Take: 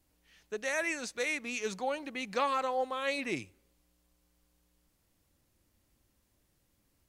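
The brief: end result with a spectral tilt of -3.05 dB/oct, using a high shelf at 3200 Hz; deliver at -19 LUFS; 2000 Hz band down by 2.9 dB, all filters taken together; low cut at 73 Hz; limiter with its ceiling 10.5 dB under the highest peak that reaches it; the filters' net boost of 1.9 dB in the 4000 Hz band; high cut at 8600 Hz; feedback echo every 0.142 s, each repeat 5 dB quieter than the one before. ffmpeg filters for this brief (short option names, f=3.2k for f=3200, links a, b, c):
-af "highpass=73,lowpass=8.6k,equalizer=f=2k:t=o:g=-3.5,highshelf=f=3.2k:g=-6.5,equalizer=f=4k:t=o:g=8,alimiter=level_in=5dB:limit=-24dB:level=0:latency=1,volume=-5dB,aecho=1:1:142|284|426|568|710|852|994:0.562|0.315|0.176|0.0988|0.0553|0.031|0.0173,volume=18.5dB"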